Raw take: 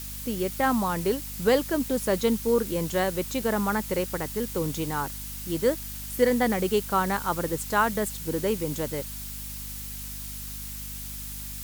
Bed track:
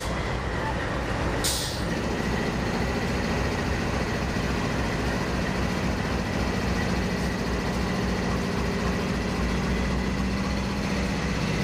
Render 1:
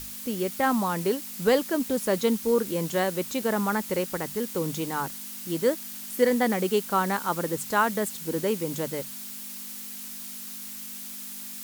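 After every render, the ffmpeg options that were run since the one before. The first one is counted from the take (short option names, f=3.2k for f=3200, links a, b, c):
-af "bandreject=f=50:t=h:w=6,bandreject=f=100:t=h:w=6,bandreject=f=150:t=h:w=6"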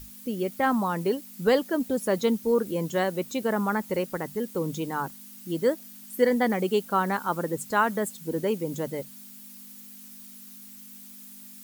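-af "afftdn=nr=11:nf=-39"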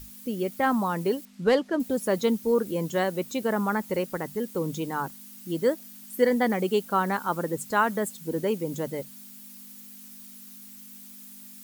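-filter_complex "[0:a]asettb=1/sr,asplit=3[a][b][c];[a]atrim=end=1.254[d];[b]atrim=start=1.25:end=1.8,asetpts=PTS-STARTPTS,afade=t=in:d=0.004:c=qsin,afade=t=out:st=0.546:d=0.004:c=qsin,adynamicsmooth=sensitivity=5.5:basefreq=4.7k[e];[c]atrim=start=1.796[f];[d][e]acrossfade=d=0.004:c1=hsin:c2=qsin[g];[g][f]acrossfade=d=0.004:c1=qsin:c2=hsin"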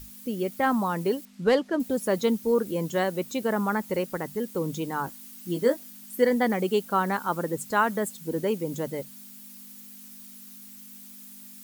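-filter_complex "[0:a]asettb=1/sr,asplit=3[a][b][c];[a]atrim=end=5.064[d];[b]atrim=start=5.06:end=5.9,asetpts=PTS-STARTPTS,afade=t=in:d=0.004:c=qsin,afade=t=out:st=0.836:d=0.004:c=qsin,asplit=2[e][f];[f]adelay=17,volume=-5.5dB[g];[e][g]amix=inputs=2:normalize=0,atrim=end_sample=37044[h];[c]atrim=start=5.896[i];[d][h]acrossfade=d=0.004:c1=hsin:c2=qsin[j];[j][i]acrossfade=d=0.004:c1=qsin:c2=hsin"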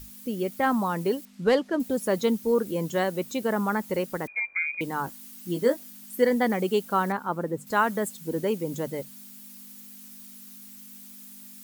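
-filter_complex "[0:a]asettb=1/sr,asplit=3[a][b][c];[a]atrim=end=4.274[d];[b]atrim=start=4.27:end=4.81,asetpts=PTS-STARTPTS,afade=t=in:d=0.004:c=qsin,afade=t=out:st=0.536:d=0.004:c=qsin,lowpass=f=2.2k:t=q:w=0.5098,lowpass=f=2.2k:t=q:w=0.6013,lowpass=f=2.2k:t=q:w=0.9,lowpass=f=2.2k:t=q:w=2.563,afreqshift=-2600[e];[c]atrim=start=4.806[f];[d][e]acrossfade=d=0.004:c1=hsin:c2=qsin[g];[g][f]acrossfade=d=0.004:c1=qsin:c2=hsin,asettb=1/sr,asplit=3[h][i][j];[h]atrim=end=7.124[k];[i]atrim=start=7.12:end=7.67,asetpts=PTS-STARTPTS,afade=t=in:d=0.004:c=qsin,afade=t=out:st=0.546:d=0.004:c=qsin,highshelf=f=2.4k:g=-12[l];[j]atrim=start=7.666[m];[k][l]acrossfade=d=0.004:c1=hsin:c2=qsin[n];[n][m]acrossfade=d=0.004:c1=qsin:c2=hsin"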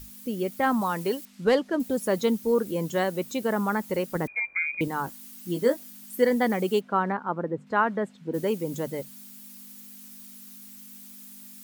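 -filter_complex "[0:a]asettb=1/sr,asplit=3[a][b][c];[a]atrim=end=0.814[d];[b]atrim=start=0.81:end=1.45,asetpts=PTS-STARTPTS,afade=t=in:d=0.004:c=qsin,afade=t=out:st=0.636:d=0.004:c=qsin,tiltshelf=f=740:g=-3[e];[c]atrim=start=1.446[f];[d][e]acrossfade=d=0.004:c1=hsin:c2=qsin[g];[g][f]acrossfade=d=0.004:c1=qsin:c2=hsin,asettb=1/sr,asplit=3[h][i][j];[h]atrim=end=4.154[k];[i]atrim=start=4.15:end=4.88,asetpts=PTS-STARTPTS,afade=t=in:d=0.004:c=qsin,afade=t=out:st=0.726:d=0.004:c=qsin,lowshelf=f=390:g=8[l];[j]atrim=start=4.876[m];[k][l]acrossfade=d=0.004:c1=hsin:c2=qsin[n];[n][m]acrossfade=d=0.004:c1=qsin:c2=hsin,asplit=3[o][p][q];[o]afade=t=out:st=6.79:d=0.02[r];[p]highpass=110,lowpass=2.4k,afade=t=in:st=6.79:d=0.02,afade=t=out:st=8.33:d=0.02[s];[q]afade=t=in:st=8.33:d=0.02[t];[r][s][t]amix=inputs=3:normalize=0"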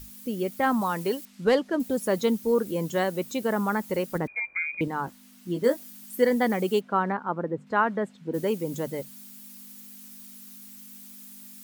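-filter_complex "[0:a]asettb=1/sr,asplit=3[a][b][c];[a]atrim=end=4.184[d];[b]atrim=start=4.18:end=5.64,asetpts=PTS-STARTPTS,afade=t=in:d=0.004:c=qsin,afade=t=out:st=1.456:d=0.004:c=qsin,lowpass=f=3.1k:p=1[e];[c]atrim=start=5.636[f];[d][e]acrossfade=d=0.004:c1=hsin:c2=qsin[g];[g][f]acrossfade=d=0.004:c1=qsin:c2=hsin"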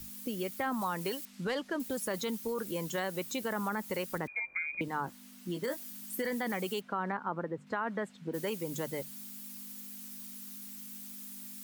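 -filter_complex "[0:a]alimiter=limit=-18.5dB:level=0:latency=1:release=11,acrossover=split=110|900[a][b][c];[a]acompressor=threshold=-57dB:ratio=4[d];[b]acompressor=threshold=-36dB:ratio=4[e];[c]acompressor=threshold=-34dB:ratio=4[f];[d][e][f]amix=inputs=3:normalize=0"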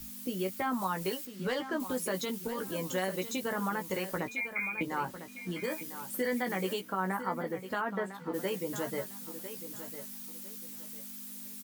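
-filter_complex "[0:a]asplit=2[a][b];[b]adelay=16,volume=-5.5dB[c];[a][c]amix=inputs=2:normalize=0,aecho=1:1:1002|2004|3006:0.266|0.0718|0.0194"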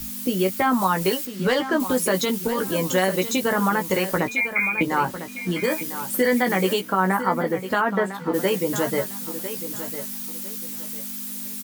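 -af "volume=12dB"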